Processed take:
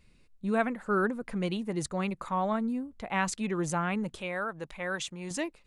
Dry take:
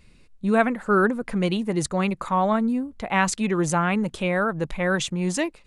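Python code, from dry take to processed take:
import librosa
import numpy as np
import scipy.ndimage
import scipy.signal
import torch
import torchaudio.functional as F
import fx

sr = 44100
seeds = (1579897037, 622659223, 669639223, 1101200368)

y = fx.low_shelf(x, sr, hz=360.0, db=-10.0, at=(4.21, 5.31))
y = y * librosa.db_to_amplitude(-8.0)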